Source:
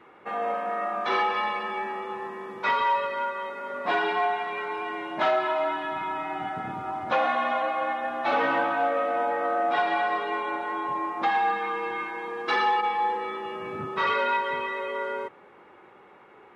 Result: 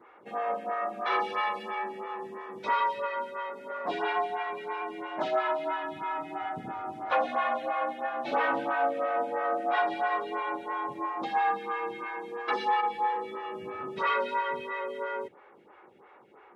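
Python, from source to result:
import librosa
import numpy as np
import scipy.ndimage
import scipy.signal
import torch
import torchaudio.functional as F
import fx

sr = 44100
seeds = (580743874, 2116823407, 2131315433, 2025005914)

y = fx.high_shelf(x, sr, hz=4400.0, db=5.5, at=(1.22, 1.75))
y = fx.stagger_phaser(y, sr, hz=3.0)
y = y * librosa.db_to_amplitude(-1.0)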